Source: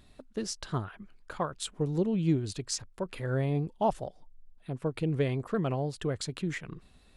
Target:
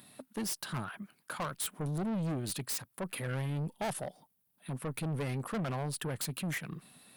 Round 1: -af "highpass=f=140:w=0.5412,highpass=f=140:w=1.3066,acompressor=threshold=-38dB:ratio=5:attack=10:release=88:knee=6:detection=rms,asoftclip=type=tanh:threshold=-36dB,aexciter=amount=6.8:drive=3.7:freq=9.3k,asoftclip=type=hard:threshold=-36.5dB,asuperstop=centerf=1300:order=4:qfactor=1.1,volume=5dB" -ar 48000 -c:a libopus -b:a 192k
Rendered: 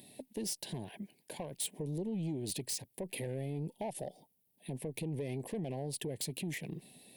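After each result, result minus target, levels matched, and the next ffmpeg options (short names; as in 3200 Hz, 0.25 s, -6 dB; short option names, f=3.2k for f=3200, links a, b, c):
compressor: peak gain reduction +15 dB; 1000 Hz band -5.5 dB; 500 Hz band +2.5 dB
-af "highpass=f=140:w=0.5412,highpass=f=140:w=1.3066,asoftclip=type=tanh:threshold=-36dB,aexciter=amount=6.8:drive=3.7:freq=9.3k,asoftclip=type=hard:threshold=-36.5dB,asuperstop=centerf=1300:order=4:qfactor=1.1,volume=5dB" -ar 48000 -c:a libopus -b:a 192k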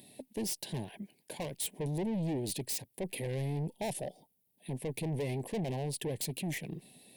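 1000 Hz band -4.5 dB; 500 Hz band +3.0 dB
-af "highpass=f=140:w=0.5412,highpass=f=140:w=1.3066,asoftclip=type=tanh:threshold=-36dB,aexciter=amount=6.8:drive=3.7:freq=9.3k,asoftclip=type=hard:threshold=-36.5dB,volume=5dB" -ar 48000 -c:a libopus -b:a 192k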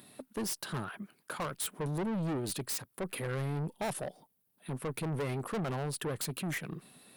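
500 Hz band +2.5 dB
-af "highpass=f=140:w=0.5412,highpass=f=140:w=1.3066,equalizer=f=400:t=o:w=0.92:g=-6.5,asoftclip=type=tanh:threshold=-36dB,aexciter=amount=6.8:drive=3.7:freq=9.3k,asoftclip=type=hard:threshold=-36.5dB,volume=5dB" -ar 48000 -c:a libopus -b:a 192k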